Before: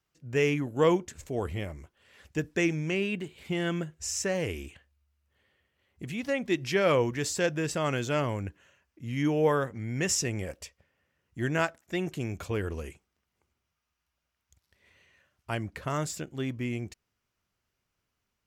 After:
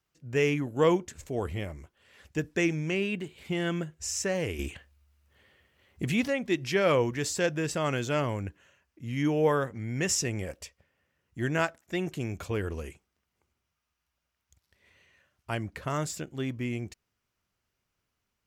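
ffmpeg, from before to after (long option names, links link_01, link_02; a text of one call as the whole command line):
ffmpeg -i in.wav -filter_complex "[0:a]asplit=3[link_01][link_02][link_03];[link_01]atrim=end=4.592[link_04];[link_02]atrim=start=4.588:end=6.282,asetpts=PTS-STARTPTS,volume=8dB[link_05];[link_03]atrim=start=6.278[link_06];[link_04][link_05]acrossfade=duration=0.004:curve1=hsin:curve2=hsin[link_07];[link_07][link_06]acrossfade=duration=0.004:curve1=hsin:curve2=hsin" out.wav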